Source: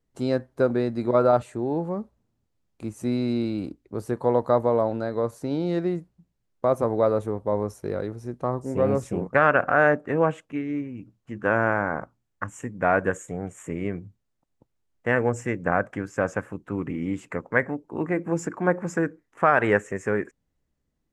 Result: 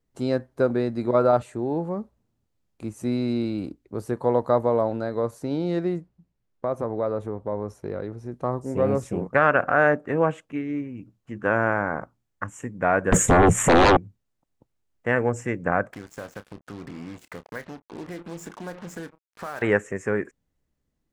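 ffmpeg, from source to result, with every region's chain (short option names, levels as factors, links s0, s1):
-filter_complex "[0:a]asettb=1/sr,asplit=3[s0][s1][s2];[s0]atrim=end=5.984[s3];[s1]atrim=start=5.98:end=8.32,asetpts=PTS-STARTPTS,afade=t=in:d=0.004:c=qsin,afade=t=out:st=2.336:d=0.004:c=qsin,lowpass=f=3600:p=1,acompressor=threshold=0.0355:ratio=1.5:attack=3.2:release=140:knee=1:detection=peak[s4];[s2]atrim=start=8.316[s5];[s3][s4]acrossfade=d=0.004:c1=hsin:c2=qsin[s6];[s6][s5]acrossfade=d=0.004:c1=qsin:c2=hsin,asettb=1/sr,asplit=3[s7][s8][s9];[s7]atrim=end=13.124[s10];[s8]atrim=start=13.12:end=13.97,asetpts=PTS-STARTPTS,afade=t=in:d=0.004:c=qsin,afade=t=out:st=0.846:d=0.004:c=qsin,lowshelf=f=250:t=q:w=1.5:g=10.5,aeval=exprs='0.266*sin(PI/2*7.08*val(0)/0.266)':c=same[s11];[s9]atrim=start=13.966[s12];[s10][s11]acrossfade=d=0.004:c1=hsin:c2=qsin[s13];[s13][s12]acrossfade=d=0.004:c1=qsin:c2=hsin,asettb=1/sr,asplit=3[s14][s15][s16];[s14]atrim=end=15.934[s17];[s15]atrim=start=15.93:end=19.62,asetpts=PTS-STARTPTS,afade=t=in:d=0.004:c=qsin,afade=t=out:st=3.686:d=0.004:c=qsin,acompressor=threshold=0.0126:ratio=2.5:attack=3.2:release=140:knee=1:detection=peak,acrusher=bits=6:mix=0:aa=0.5,asplit=2[s18][s19];[s19]adelay=29,volume=0.224[s20];[s18][s20]amix=inputs=2:normalize=0,atrim=end_sample=162729[s21];[s16]atrim=start=19.616[s22];[s17][s21]acrossfade=d=0.004:c1=hsin:c2=qsin[s23];[s23][s22]acrossfade=d=0.004:c1=qsin:c2=hsin"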